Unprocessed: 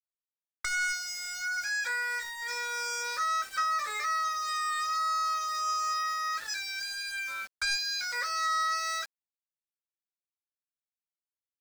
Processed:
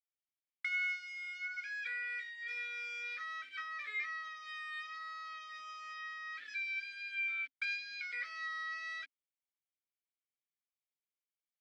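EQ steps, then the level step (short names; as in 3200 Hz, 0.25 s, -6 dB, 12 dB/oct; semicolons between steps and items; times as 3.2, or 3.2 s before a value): vowel filter i; three-band isolator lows -23 dB, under 480 Hz, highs -14 dB, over 3700 Hz; +9.5 dB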